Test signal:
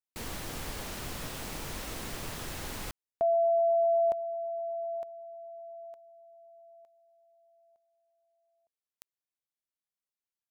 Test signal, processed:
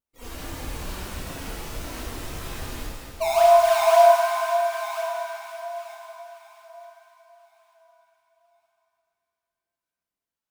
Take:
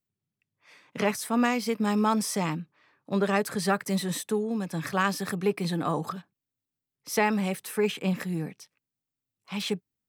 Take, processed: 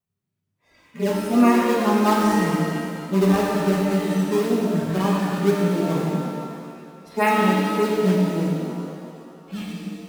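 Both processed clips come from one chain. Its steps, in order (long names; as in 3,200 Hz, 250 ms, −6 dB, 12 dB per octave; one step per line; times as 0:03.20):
harmonic-percussive split with one part muted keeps harmonic
pitch vibrato 1.8 Hz 46 cents
in parallel at −4 dB: sample-and-hold swept by an LFO 17×, swing 160% 1.9 Hz
on the sum: reverb with rising layers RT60 2.2 s, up +7 semitones, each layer −8 dB, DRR −3 dB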